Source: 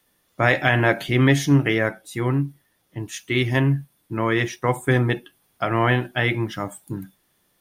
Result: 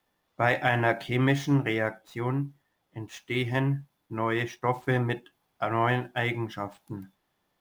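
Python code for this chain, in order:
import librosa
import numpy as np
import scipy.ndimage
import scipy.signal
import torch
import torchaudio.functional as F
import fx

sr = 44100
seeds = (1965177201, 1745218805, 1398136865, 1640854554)

y = scipy.ndimage.median_filter(x, 5, mode='constant')
y = fx.peak_eq(y, sr, hz=830.0, db=6.0, octaves=0.78)
y = y * 10.0 ** (-7.5 / 20.0)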